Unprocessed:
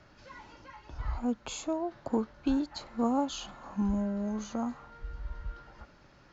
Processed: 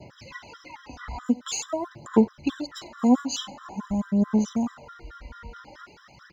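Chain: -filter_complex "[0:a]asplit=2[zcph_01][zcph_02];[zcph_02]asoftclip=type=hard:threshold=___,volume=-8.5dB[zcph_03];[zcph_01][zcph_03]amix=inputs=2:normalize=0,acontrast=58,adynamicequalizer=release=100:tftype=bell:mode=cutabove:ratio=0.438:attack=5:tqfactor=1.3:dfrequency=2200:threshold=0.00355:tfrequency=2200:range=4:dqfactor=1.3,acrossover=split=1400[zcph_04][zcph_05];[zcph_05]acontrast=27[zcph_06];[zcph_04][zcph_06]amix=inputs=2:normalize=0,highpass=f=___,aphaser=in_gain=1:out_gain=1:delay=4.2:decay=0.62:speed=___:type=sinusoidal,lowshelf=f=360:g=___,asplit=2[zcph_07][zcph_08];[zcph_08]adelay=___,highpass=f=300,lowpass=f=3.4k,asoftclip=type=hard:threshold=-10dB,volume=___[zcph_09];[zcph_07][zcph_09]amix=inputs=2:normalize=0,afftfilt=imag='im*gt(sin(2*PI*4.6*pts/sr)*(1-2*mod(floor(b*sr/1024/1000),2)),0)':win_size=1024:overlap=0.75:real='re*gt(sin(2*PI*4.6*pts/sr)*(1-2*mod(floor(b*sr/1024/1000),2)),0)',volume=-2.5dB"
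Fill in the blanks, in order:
-33dB, 95, 0.46, 2, 90, -23dB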